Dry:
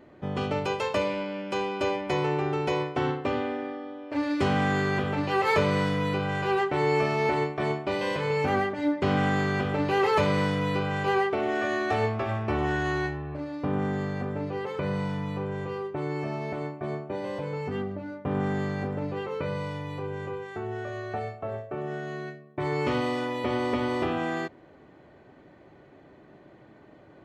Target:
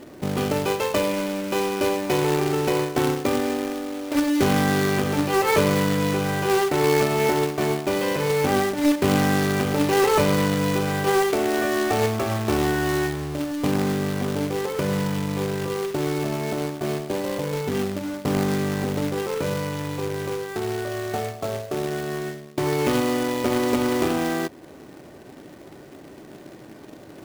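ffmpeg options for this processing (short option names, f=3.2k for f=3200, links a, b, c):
-filter_complex "[0:a]equalizer=f=290:w=0.83:g=5.5,asplit=2[a][b];[b]acompressor=threshold=-36dB:ratio=6,volume=-0.5dB[c];[a][c]amix=inputs=2:normalize=0,acrusher=bits=2:mode=log:mix=0:aa=0.000001"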